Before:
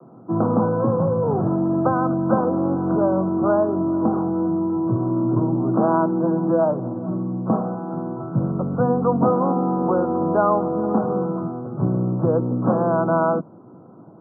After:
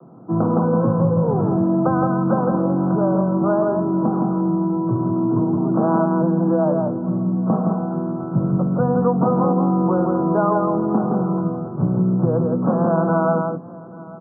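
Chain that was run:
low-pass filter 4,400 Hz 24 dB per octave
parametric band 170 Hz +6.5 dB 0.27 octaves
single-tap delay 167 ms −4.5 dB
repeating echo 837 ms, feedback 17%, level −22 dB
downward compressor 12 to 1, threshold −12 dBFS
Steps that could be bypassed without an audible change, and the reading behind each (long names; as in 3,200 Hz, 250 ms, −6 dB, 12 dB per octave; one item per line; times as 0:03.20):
low-pass filter 4,400 Hz: nothing at its input above 1,400 Hz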